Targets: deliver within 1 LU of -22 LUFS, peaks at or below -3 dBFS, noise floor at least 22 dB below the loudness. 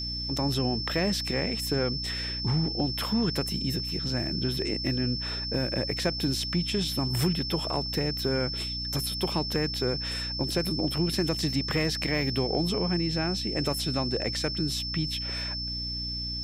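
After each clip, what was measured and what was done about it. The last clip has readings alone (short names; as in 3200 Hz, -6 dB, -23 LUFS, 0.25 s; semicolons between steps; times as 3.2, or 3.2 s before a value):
hum 60 Hz; harmonics up to 300 Hz; hum level -35 dBFS; steady tone 5300 Hz; tone level -32 dBFS; loudness -28.0 LUFS; peak -14.0 dBFS; loudness target -22.0 LUFS
-> de-hum 60 Hz, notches 5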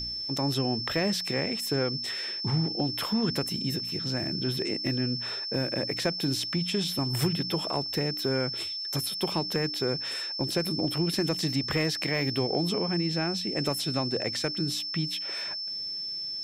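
hum none; steady tone 5300 Hz; tone level -32 dBFS
-> notch 5300 Hz, Q 30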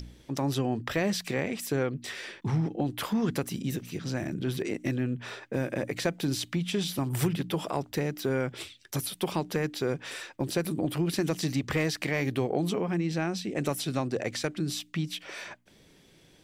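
steady tone none; loudness -31.0 LUFS; peak -15.5 dBFS; loudness target -22.0 LUFS
-> gain +9 dB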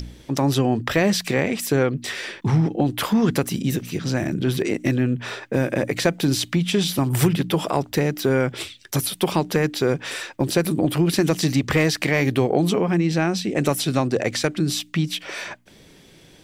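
loudness -22.0 LUFS; peak -6.5 dBFS; noise floor -50 dBFS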